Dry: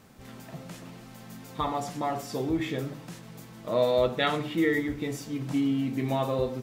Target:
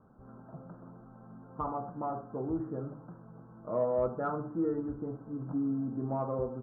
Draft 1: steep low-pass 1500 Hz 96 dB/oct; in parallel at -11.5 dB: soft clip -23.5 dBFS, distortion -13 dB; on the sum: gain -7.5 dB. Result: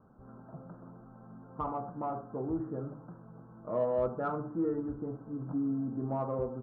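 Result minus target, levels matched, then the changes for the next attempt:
soft clip: distortion +8 dB
change: soft clip -17 dBFS, distortion -21 dB

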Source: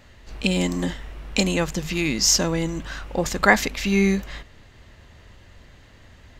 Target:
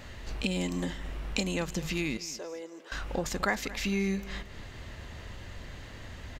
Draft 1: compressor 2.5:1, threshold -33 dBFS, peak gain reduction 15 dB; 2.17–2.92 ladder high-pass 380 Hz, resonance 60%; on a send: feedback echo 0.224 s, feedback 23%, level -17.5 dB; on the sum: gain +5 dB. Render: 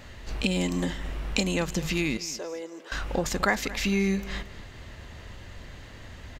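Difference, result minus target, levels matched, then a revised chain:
compressor: peak gain reduction -4.5 dB
compressor 2.5:1, threshold -40.5 dBFS, peak gain reduction 19.5 dB; 2.17–2.92 ladder high-pass 380 Hz, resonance 60%; on a send: feedback echo 0.224 s, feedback 23%, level -17.5 dB; on the sum: gain +5 dB

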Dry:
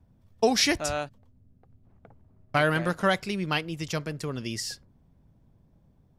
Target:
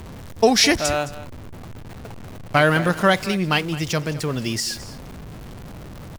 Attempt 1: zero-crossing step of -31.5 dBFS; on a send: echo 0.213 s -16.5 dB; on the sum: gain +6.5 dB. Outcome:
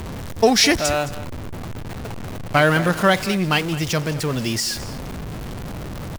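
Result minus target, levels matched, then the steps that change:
zero-crossing step: distortion +6 dB
change: zero-crossing step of -38.5 dBFS

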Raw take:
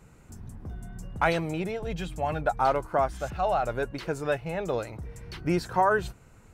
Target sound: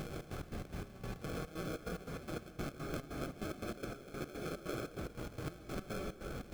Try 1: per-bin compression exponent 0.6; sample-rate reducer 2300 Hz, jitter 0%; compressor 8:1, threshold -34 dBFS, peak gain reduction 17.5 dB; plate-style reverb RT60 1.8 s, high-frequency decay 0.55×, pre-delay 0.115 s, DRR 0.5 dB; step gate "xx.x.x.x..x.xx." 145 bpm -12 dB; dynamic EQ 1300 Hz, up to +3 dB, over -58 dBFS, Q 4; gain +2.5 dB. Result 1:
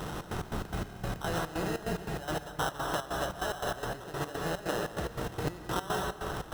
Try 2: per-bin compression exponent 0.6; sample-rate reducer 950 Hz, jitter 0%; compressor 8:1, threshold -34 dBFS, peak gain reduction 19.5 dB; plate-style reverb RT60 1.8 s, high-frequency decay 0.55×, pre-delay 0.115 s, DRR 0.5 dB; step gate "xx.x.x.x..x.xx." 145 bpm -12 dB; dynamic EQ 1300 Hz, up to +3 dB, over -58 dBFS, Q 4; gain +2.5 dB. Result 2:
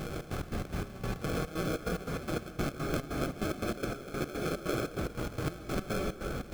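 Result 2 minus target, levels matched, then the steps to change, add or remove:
compressor: peak gain reduction -8.5 dB
change: compressor 8:1, threshold -43.5 dBFS, peak gain reduction 27.5 dB

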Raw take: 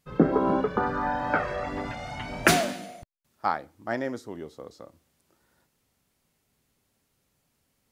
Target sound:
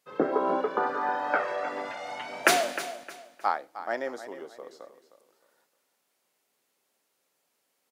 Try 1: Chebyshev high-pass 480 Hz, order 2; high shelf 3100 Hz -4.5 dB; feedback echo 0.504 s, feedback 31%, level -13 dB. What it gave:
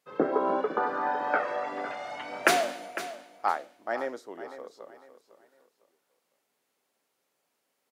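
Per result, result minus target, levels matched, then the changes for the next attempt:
echo 0.195 s late; 8000 Hz band -3.0 dB
change: feedback echo 0.309 s, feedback 31%, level -13 dB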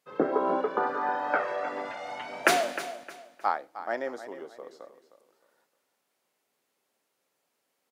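8000 Hz band -3.0 dB
remove: high shelf 3100 Hz -4.5 dB

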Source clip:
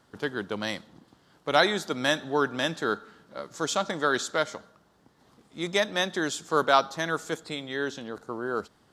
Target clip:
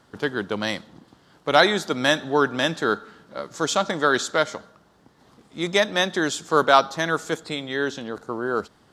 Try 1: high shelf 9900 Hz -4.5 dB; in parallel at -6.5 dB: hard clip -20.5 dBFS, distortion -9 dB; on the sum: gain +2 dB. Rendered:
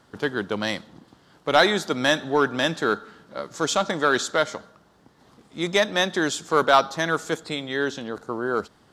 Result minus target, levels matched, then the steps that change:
hard clip: distortion +17 dB
change: hard clip -10.5 dBFS, distortion -26 dB

